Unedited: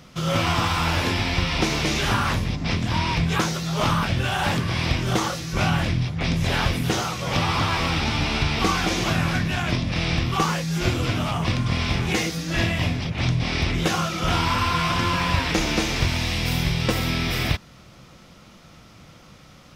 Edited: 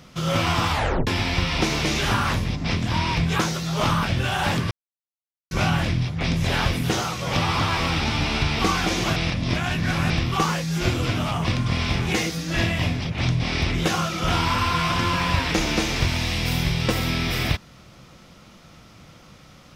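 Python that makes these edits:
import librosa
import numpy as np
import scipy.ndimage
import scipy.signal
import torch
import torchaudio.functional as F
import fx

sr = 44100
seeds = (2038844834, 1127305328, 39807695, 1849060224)

y = fx.edit(x, sr, fx.tape_stop(start_s=0.7, length_s=0.37),
    fx.silence(start_s=4.71, length_s=0.8),
    fx.reverse_span(start_s=9.16, length_s=0.94), tone=tone)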